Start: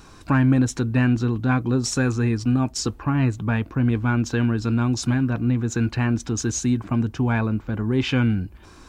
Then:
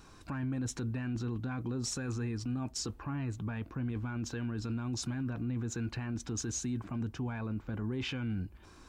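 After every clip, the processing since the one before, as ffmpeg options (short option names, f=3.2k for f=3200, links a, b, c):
-af "alimiter=limit=-19dB:level=0:latency=1:release=20,volume=-9dB"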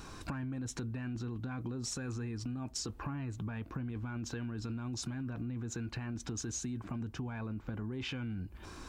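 -af "acompressor=threshold=-43dB:ratio=12,volume=7.5dB"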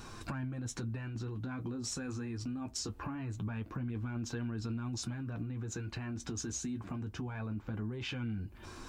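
-af "flanger=delay=8.3:depth=3.8:regen=-35:speed=0.23:shape=triangular,volume=4dB"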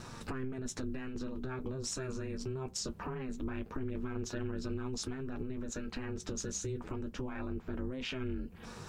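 -af "aeval=exprs='val(0)*sin(2*PI*130*n/s)':c=same,volume=3.5dB"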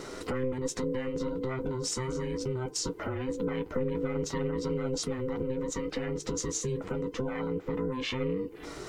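-af "afftfilt=real='real(if(between(b,1,1008),(2*floor((b-1)/24)+1)*24-b,b),0)':imag='imag(if(between(b,1,1008),(2*floor((b-1)/24)+1)*24-b,b),0)*if(between(b,1,1008),-1,1)':win_size=2048:overlap=0.75,volume=5.5dB"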